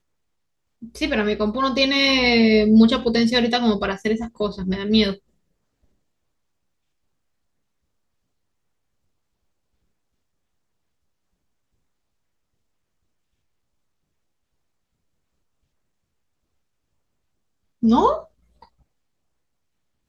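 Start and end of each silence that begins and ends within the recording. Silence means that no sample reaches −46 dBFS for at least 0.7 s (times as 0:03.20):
0:05.18–0:17.82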